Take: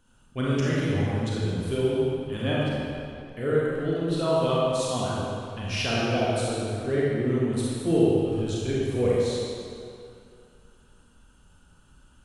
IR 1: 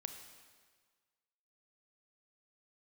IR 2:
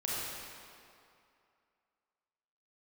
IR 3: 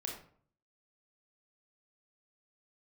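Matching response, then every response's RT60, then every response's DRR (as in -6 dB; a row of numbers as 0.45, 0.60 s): 2; 1.6, 2.5, 0.55 s; 6.0, -7.0, -0.5 dB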